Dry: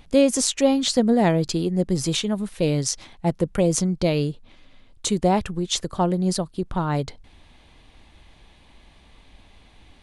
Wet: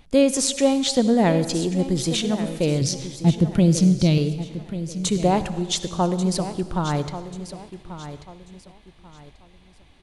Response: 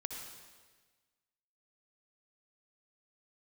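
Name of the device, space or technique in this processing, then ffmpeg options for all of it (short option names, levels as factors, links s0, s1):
keyed gated reverb: -filter_complex "[0:a]asettb=1/sr,asplit=3[s0][s1][s2];[s0]atrim=end=2.814[s3];[s1]atrim=start=2.81:end=4.18,asetpts=PTS-STARTPTS,afade=t=in:d=0.004:c=qsin,afade=t=out:st=1.366:d=0.004:c=qsin,equalizer=f=125:t=o:w=1:g=10,equalizer=f=250:t=o:w=1:g=5,equalizer=f=500:t=o:w=1:g=-7,equalizer=f=1000:t=o:w=1:g=-4,equalizer=f=2000:t=o:w=1:g=-3,equalizer=f=4000:t=o:w=1:g=6,equalizer=f=8000:t=o:w=1:g=-6[s4];[s2]atrim=start=4.176[s5];[s3][s4]acrossfade=d=0.004:c1=hsin:c2=qsin[s6];[s6][s5]acrossfade=d=0.004:c1=qsin:c2=hsin,aecho=1:1:1138|2276|3414:0.237|0.0783|0.0258,asplit=3[s7][s8][s9];[1:a]atrim=start_sample=2205[s10];[s8][s10]afir=irnorm=-1:irlink=0[s11];[s9]apad=whole_len=592835[s12];[s11][s12]sidechaingate=range=0.0224:threshold=0.00794:ratio=16:detection=peak,volume=0.562[s13];[s7][s13]amix=inputs=2:normalize=0,volume=0.708"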